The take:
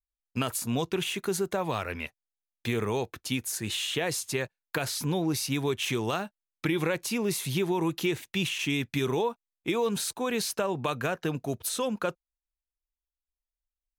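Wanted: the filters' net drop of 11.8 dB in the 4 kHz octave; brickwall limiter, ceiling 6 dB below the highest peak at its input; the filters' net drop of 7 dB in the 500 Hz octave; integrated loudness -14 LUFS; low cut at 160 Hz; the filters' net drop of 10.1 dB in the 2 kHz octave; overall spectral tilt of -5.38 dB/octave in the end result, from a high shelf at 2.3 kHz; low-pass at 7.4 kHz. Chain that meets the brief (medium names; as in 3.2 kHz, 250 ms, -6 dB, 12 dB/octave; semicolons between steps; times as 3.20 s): high-pass 160 Hz; low-pass 7.4 kHz; peaking EQ 500 Hz -8.5 dB; peaking EQ 2 kHz -7 dB; treble shelf 2.3 kHz -7 dB; peaking EQ 4 kHz -6 dB; trim +23.5 dB; peak limiter -2.5 dBFS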